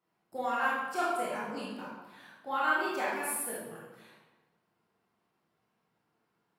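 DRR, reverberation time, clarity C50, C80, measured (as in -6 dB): -7.5 dB, 1.2 s, -1.5 dB, 2.5 dB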